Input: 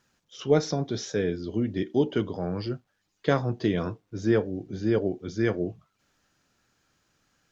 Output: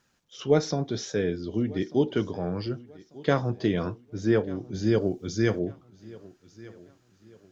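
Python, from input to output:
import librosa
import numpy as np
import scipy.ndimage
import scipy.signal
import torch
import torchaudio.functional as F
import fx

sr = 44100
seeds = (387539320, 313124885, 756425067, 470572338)

y = fx.bass_treble(x, sr, bass_db=3, treble_db=11, at=(4.74, 5.59))
y = fx.echo_feedback(y, sr, ms=1193, feedback_pct=36, wet_db=-21.5)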